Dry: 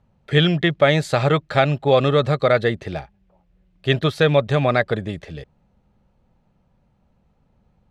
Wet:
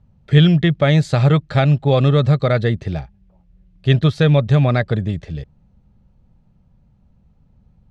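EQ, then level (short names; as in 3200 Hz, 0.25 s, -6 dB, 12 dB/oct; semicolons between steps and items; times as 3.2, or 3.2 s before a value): air absorption 74 m; tone controls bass +12 dB, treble +8 dB; -2.5 dB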